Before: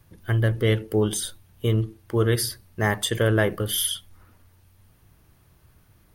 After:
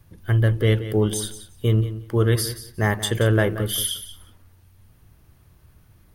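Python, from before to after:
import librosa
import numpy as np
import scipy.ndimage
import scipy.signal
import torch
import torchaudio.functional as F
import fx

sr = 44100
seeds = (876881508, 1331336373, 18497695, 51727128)

p1 = fx.low_shelf(x, sr, hz=180.0, db=5.0)
y = p1 + fx.echo_feedback(p1, sr, ms=179, feedback_pct=16, wet_db=-13.0, dry=0)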